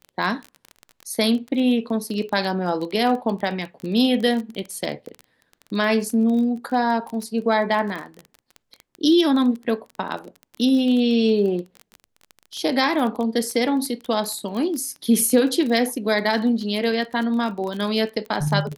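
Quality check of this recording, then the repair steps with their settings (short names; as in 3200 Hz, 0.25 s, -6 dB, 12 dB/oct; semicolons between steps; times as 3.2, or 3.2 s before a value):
crackle 21/s -27 dBFS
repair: de-click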